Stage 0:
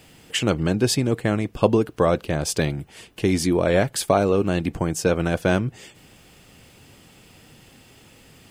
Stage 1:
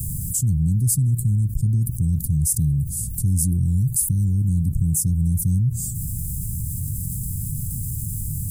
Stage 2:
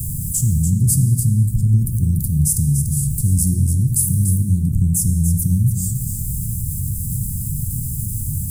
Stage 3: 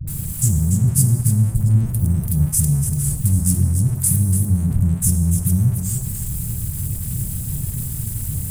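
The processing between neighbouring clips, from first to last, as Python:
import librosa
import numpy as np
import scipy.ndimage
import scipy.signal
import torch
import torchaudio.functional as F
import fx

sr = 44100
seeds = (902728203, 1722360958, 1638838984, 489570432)

y1 = scipy.signal.sosfilt(scipy.signal.cheby2(4, 80, [620.0, 2400.0], 'bandstop', fs=sr, output='sos'), x)
y1 = fx.env_flatten(y1, sr, amount_pct=70)
y1 = y1 * librosa.db_to_amplitude(7.0)
y2 = y1 + 10.0 ** (-8.0 / 20.0) * np.pad(y1, (int(290 * sr / 1000.0), 0))[:len(y1)]
y2 = fx.rev_plate(y2, sr, seeds[0], rt60_s=1.5, hf_ratio=0.75, predelay_ms=0, drr_db=6.0)
y2 = y2 * librosa.db_to_amplitude(2.5)
y3 = np.sign(y2) * np.maximum(np.abs(y2) - 10.0 ** (-36.5 / 20.0), 0.0)
y3 = fx.dispersion(y3, sr, late='highs', ms=75.0, hz=420.0)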